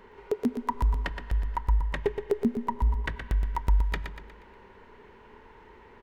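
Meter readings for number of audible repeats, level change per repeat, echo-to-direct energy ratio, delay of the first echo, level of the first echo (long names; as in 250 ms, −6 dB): 4, −7.0 dB, −6.5 dB, 120 ms, −7.5 dB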